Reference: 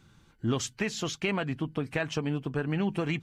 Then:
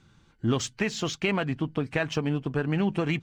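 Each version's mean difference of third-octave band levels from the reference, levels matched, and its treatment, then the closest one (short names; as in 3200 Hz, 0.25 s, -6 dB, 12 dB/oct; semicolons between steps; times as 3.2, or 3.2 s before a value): 1.0 dB: LPF 8000 Hz 12 dB/oct; in parallel at -7 dB: backlash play -38.5 dBFS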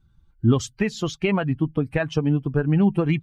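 8.0 dB: per-bin expansion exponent 1.5; tilt -2 dB/oct; gain +7.5 dB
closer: first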